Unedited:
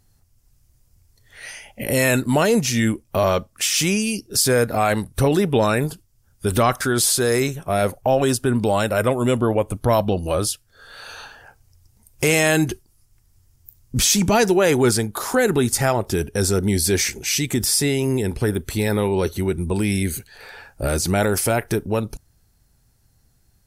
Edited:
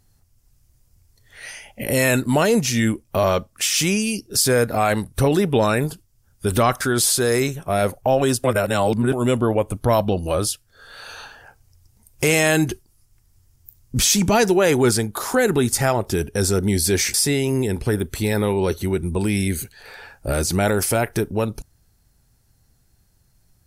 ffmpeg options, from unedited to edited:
-filter_complex "[0:a]asplit=4[a][b][c][d];[a]atrim=end=8.442[e];[b]atrim=start=8.438:end=9.132,asetpts=PTS-STARTPTS,areverse[f];[c]atrim=start=9.128:end=17.142[g];[d]atrim=start=17.688[h];[e][f]acrossfade=d=0.004:c1=hsin:c2=hsin[i];[i][g]acrossfade=d=0.004:c1=hsin:c2=hsin[j];[j][h]acrossfade=d=0.004:c1=hsin:c2=hsin"

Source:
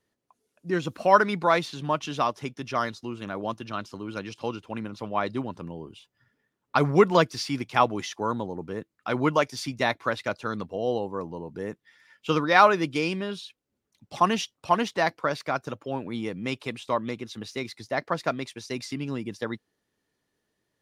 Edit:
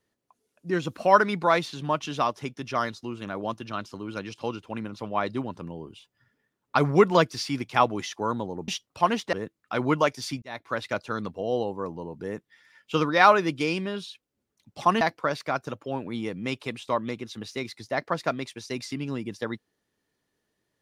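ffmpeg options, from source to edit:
-filter_complex "[0:a]asplit=5[a][b][c][d][e];[a]atrim=end=8.682[f];[b]atrim=start=14.358:end=15.012[g];[c]atrim=start=8.678:end=9.77,asetpts=PTS-STARTPTS,afade=t=out:st=1.088:d=0.004:c=hsin[h];[d]atrim=start=9.77:end=14.362,asetpts=PTS-STARTPTS,afade=t=in:d=0.44[i];[e]atrim=start=15.008[j];[f][g]acrossfade=d=0.004:c1=hsin:c2=hsin[k];[h][i]concat=n=2:v=0:a=1[l];[k][l]acrossfade=d=0.004:c1=hsin:c2=hsin[m];[m][j]acrossfade=d=0.004:c1=hsin:c2=hsin"

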